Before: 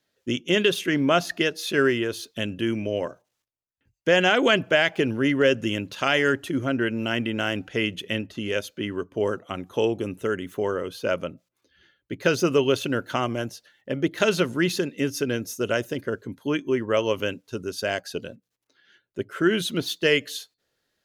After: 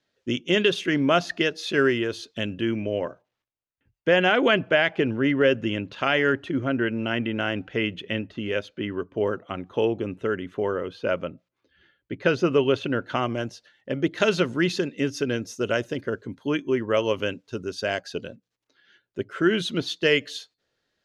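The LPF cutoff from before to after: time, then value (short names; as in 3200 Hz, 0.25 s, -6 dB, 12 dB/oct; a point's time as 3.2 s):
2.36 s 5800 Hz
2.86 s 3200 Hz
12.97 s 3200 Hz
13.51 s 5900 Hz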